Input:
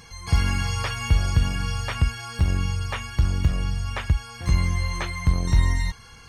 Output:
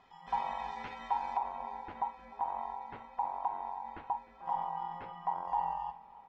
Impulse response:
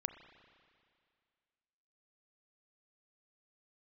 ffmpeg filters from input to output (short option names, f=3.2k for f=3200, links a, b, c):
-filter_complex "[0:a]aeval=exprs='val(0)*sin(2*PI*880*n/s)':c=same,asetnsamples=n=441:p=0,asendcmd='1.37 lowpass f 1300',lowpass=2.3k,aecho=1:1:305|610|915|1220:0.0944|0.051|0.0275|0.0149[a];[1:a]atrim=start_sample=2205,atrim=end_sample=6174,asetrate=70560,aresample=44100[b];[a][b]afir=irnorm=-1:irlink=0,volume=-6dB"